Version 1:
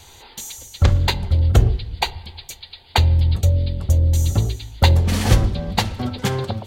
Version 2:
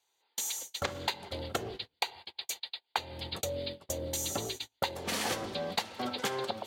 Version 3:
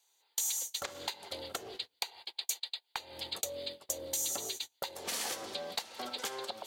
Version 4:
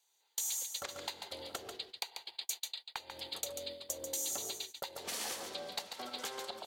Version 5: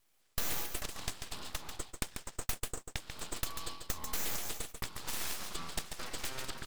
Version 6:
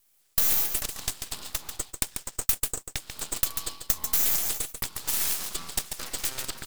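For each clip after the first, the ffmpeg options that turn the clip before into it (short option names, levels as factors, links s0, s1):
-af "highpass=410,agate=range=0.0282:threshold=0.0126:ratio=16:detection=peak,acompressor=threshold=0.0316:ratio=6"
-af "aeval=exprs='0.237*(cos(1*acos(clip(val(0)/0.237,-1,1)))-cos(1*PI/2))+0.0668*(cos(2*acos(clip(val(0)/0.237,-1,1)))-cos(2*PI/2))':c=same,acompressor=threshold=0.0126:ratio=3,bass=f=250:g=-13,treble=f=4000:g=8"
-af "aecho=1:1:141:0.447,volume=0.668"
-af "aeval=exprs='abs(val(0))':c=same,volume=1.68"
-filter_complex "[0:a]crystalizer=i=2:c=0,asplit=2[s0][s1];[s1]acrusher=bits=4:mix=0:aa=0.000001,volume=0.422[s2];[s0][s2]amix=inputs=2:normalize=0"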